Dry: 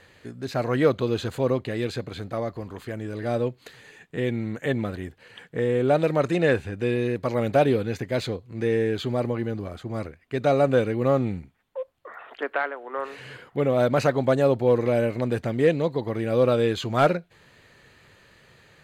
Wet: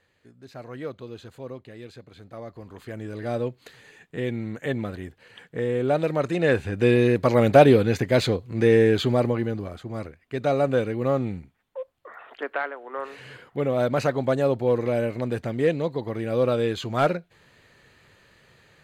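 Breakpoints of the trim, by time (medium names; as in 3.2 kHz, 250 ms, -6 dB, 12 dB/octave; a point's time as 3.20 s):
2.08 s -14 dB
3.00 s -2 dB
6.36 s -2 dB
6.85 s +6 dB
8.96 s +6 dB
9.88 s -2 dB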